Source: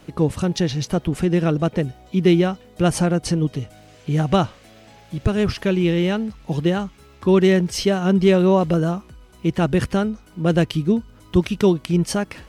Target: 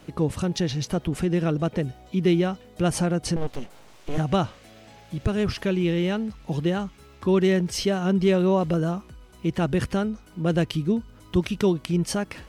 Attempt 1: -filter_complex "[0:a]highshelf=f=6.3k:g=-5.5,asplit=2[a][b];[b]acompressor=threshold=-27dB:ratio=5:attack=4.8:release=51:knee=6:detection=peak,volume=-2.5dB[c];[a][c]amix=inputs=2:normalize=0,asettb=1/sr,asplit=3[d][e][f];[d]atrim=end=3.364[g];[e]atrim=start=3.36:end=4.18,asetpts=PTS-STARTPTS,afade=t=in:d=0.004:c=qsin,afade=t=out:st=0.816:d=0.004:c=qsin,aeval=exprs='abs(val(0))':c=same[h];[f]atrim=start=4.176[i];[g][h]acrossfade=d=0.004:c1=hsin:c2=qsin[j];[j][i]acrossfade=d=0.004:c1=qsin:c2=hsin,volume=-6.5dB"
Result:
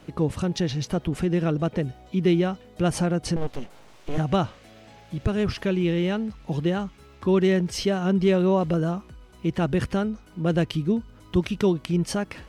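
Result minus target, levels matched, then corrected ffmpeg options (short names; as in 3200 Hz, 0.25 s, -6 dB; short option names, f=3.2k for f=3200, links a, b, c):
8000 Hz band -2.5 dB
-filter_complex "[0:a]asplit=2[a][b];[b]acompressor=threshold=-27dB:ratio=5:attack=4.8:release=51:knee=6:detection=peak,volume=-2.5dB[c];[a][c]amix=inputs=2:normalize=0,asettb=1/sr,asplit=3[d][e][f];[d]atrim=end=3.364[g];[e]atrim=start=3.36:end=4.18,asetpts=PTS-STARTPTS,afade=t=in:d=0.004:c=qsin,afade=t=out:st=0.816:d=0.004:c=qsin,aeval=exprs='abs(val(0))':c=same[h];[f]atrim=start=4.176[i];[g][h]acrossfade=d=0.004:c1=hsin:c2=qsin[j];[j][i]acrossfade=d=0.004:c1=qsin:c2=hsin,volume=-6.5dB"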